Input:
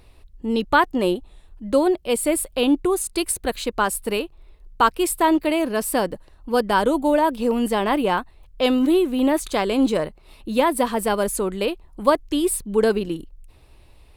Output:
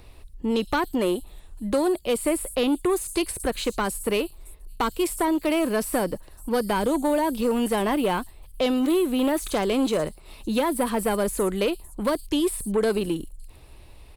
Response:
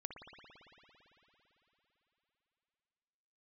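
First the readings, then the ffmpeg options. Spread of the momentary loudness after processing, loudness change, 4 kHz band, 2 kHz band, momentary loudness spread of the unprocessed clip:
6 LU, −3.5 dB, −3.0 dB, −5.5 dB, 8 LU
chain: -filter_complex "[0:a]acrossover=split=410|3500[link_01][link_02][link_03];[link_01]acompressor=threshold=-26dB:ratio=4[link_04];[link_02]acompressor=threshold=-25dB:ratio=4[link_05];[link_03]acompressor=threshold=-38dB:ratio=4[link_06];[link_04][link_05][link_06]amix=inputs=3:normalize=0,acrossover=split=6300[link_07][link_08];[link_07]asoftclip=type=tanh:threshold=-18.5dB[link_09];[link_08]aecho=1:1:51|112|562:0.708|0.631|0.2[link_10];[link_09][link_10]amix=inputs=2:normalize=0,volume=3dB"

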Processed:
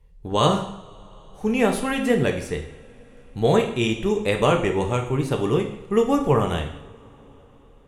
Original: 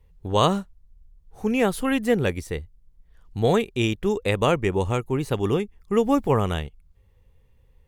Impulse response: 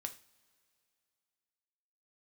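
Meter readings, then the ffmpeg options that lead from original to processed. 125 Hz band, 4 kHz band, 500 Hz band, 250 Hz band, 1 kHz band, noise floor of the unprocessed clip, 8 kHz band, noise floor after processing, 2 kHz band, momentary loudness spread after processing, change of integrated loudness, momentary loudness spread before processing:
+1.0 dB, +2.0 dB, +2.0 dB, +1.0 dB, +1.5 dB, −58 dBFS, +2.0 dB, −50 dBFS, +1.5 dB, 12 LU, +1.5 dB, 10 LU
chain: -filter_complex "[1:a]atrim=start_sample=2205,asetrate=22491,aresample=44100[link_01];[0:a][link_01]afir=irnorm=-1:irlink=0"

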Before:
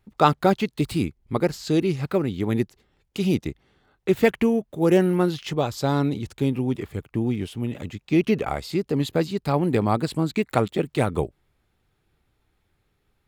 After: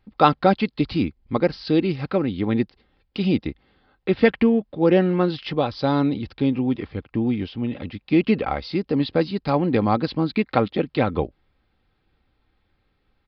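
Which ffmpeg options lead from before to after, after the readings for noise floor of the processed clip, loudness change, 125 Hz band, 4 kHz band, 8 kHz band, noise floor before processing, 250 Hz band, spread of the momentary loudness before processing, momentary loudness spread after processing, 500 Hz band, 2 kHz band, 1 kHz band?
−69 dBFS, +1.5 dB, −0.5 dB, +2.0 dB, below −20 dB, −71 dBFS, +2.5 dB, 10 LU, 10 LU, +1.0 dB, +2.0 dB, +2.5 dB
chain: -af "aecho=1:1:3.8:0.33,aresample=11025,aresample=44100,volume=1.5dB"

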